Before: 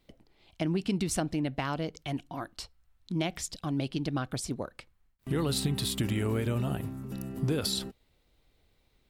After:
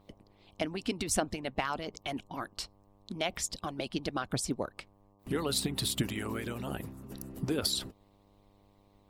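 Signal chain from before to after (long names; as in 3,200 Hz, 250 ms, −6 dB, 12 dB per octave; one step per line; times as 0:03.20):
hum with harmonics 100 Hz, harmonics 12, −56 dBFS −4 dB per octave
harmonic and percussive parts rebalanced harmonic −17 dB
level +2.5 dB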